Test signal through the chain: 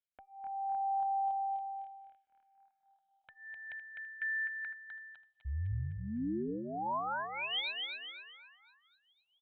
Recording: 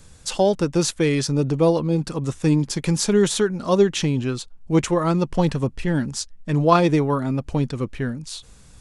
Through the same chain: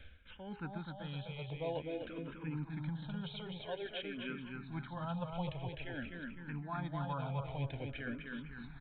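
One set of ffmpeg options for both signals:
-filter_complex "[0:a]tiltshelf=f=1.1k:g=-4.5,aecho=1:1:1.3:0.54,bandreject=f=410.9:t=h:w=4,bandreject=f=821.8:t=h:w=4,bandreject=f=1.2327k:t=h:w=4,areverse,acompressor=threshold=-32dB:ratio=16,areverse,alimiter=level_in=3.5dB:limit=-24dB:level=0:latency=1:release=429,volume=-3.5dB,asplit=2[a][b];[b]aecho=0:1:254|508|762|1016|1270|1524|1778:0.631|0.322|0.164|0.0837|0.0427|0.0218|0.0111[c];[a][c]amix=inputs=2:normalize=0,aresample=8000,aresample=44100,asplit=2[d][e];[e]afreqshift=-0.5[f];[d][f]amix=inputs=2:normalize=1,volume=-1dB"

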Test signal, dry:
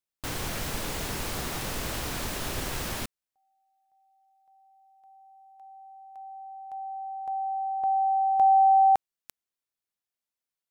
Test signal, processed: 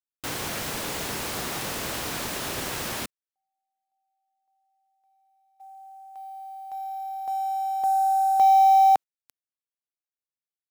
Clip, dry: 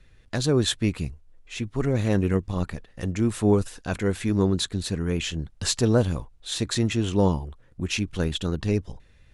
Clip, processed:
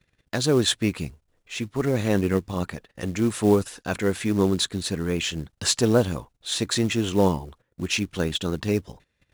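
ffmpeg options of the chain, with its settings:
-af "agate=range=-15dB:threshold=-52dB:ratio=16:release=85:detection=peak,highpass=f=190:p=1,acrusher=bits=6:mode=log:mix=0:aa=0.000001,volume=3dB"

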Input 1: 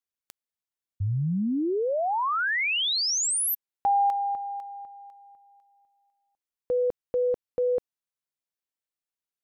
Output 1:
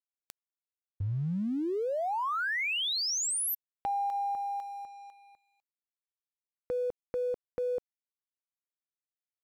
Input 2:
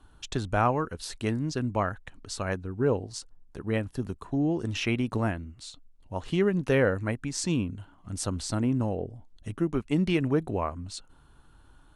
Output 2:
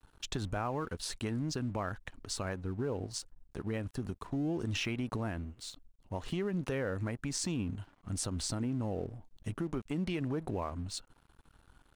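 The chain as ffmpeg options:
-af "acompressor=threshold=-29dB:ratio=6:attack=1.8:release=93:knee=1:detection=rms,aeval=exprs='sgn(val(0))*max(abs(val(0))-0.0015,0)':c=same"

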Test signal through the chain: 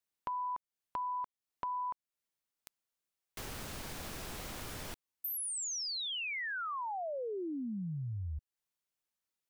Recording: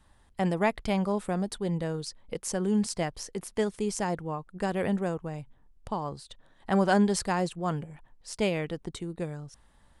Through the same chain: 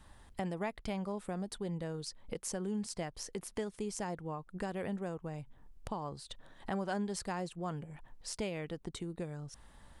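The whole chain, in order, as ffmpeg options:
-af "acompressor=threshold=-46dB:ratio=2.5,volume=4dB"

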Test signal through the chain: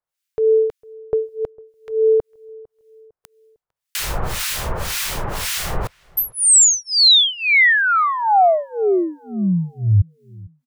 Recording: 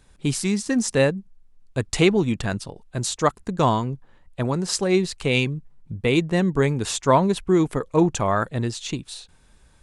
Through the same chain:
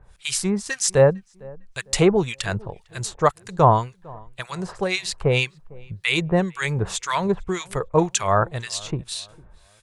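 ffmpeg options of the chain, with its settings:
-filter_complex "[0:a]equalizer=f=260:t=o:w=0.81:g=-14.5,acrossover=split=1400[a][b];[a]aeval=exprs='val(0)*(1-1/2+1/2*cos(2*PI*1.9*n/s))':c=same[c];[b]aeval=exprs='val(0)*(1-1/2-1/2*cos(2*PI*1.9*n/s))':c=same[d];[c][d]amix=inputs=2:normalize=0,asplit=2[e][f];[f]adelay=453,lowpass=f=1.4k:p=1,volume=-23.5dB,asplit=2[g][h];[h]adelay=453,lowpass=f=1.4k:p=1,volume=0.41,asplit=2[i][j];[j]adelay=453,lowpass=f=1.4k:p=1,volume=0.41[k];[e][g][i][k]amix=inputs=4:normalize=0,volume=8dB"

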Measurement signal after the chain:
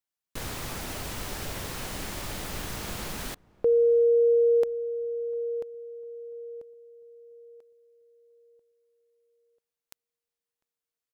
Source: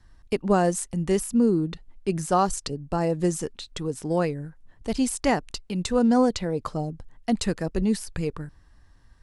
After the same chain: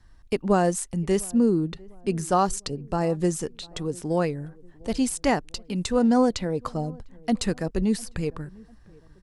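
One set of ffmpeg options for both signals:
-filter_complex "[0:a]asplit=2[a][b];[b]adelay=700,lowpass=f=970:p=1,volume=-24dB,asplit=2[c][d];[d]adelay=700,lowpass=f=970:p=1,volume=0.49,asplit=2[e][f];[f]adelay=700,lowpass=f=970:p=1,volume=0.49[g];[a][c][e][g]amix=inputs=4:normalize=0"

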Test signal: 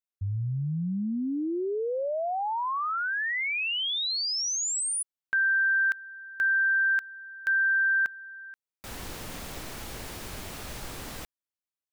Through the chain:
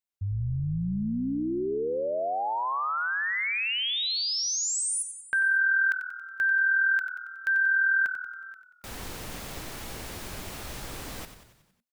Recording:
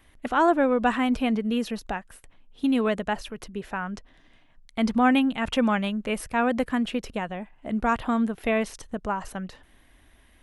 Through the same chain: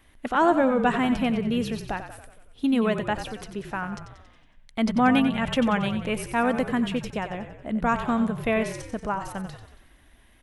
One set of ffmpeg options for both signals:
-filter_complex "[0:a]asplit=7[a][b][c][d][e][f][g];[b]adelay=92,afreqshift=-40,volume=-10dB[h];[c]adelay=184,afreqshift=-80,volume=-15dB[i];[d]adelay=276,afreqshift=-120,volume=-20.1dB[j];[e]adelay=368,afreqshift=-160,volume=-25.1dB[k];[f]adelay=460,afreqshift=-200,volume=-30.1dB[l];[g]adelay=552,afreqshift=-240,volume=-35.2dB[m];[a][h][i][j][k][l][m]amix=inputs=7:normalize=0"

